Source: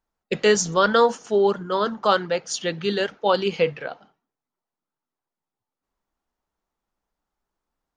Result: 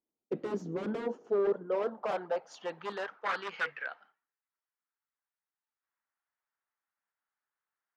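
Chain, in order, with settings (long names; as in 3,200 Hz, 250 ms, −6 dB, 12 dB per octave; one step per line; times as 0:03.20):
wave folding −19 dBFS
band-pass filter sweep 320 Hz → 1,700 Hz, 0:00.86–0:03.83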